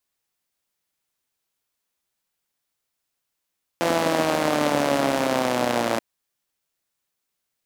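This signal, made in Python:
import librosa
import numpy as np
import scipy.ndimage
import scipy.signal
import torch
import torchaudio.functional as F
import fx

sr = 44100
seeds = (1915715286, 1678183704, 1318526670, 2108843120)

y = fx.engine_four_rev(sr, seeds[0], length_s=2.18, rpm=5100, resonances_hz=(290.0, 560.0), end_rpm=3400)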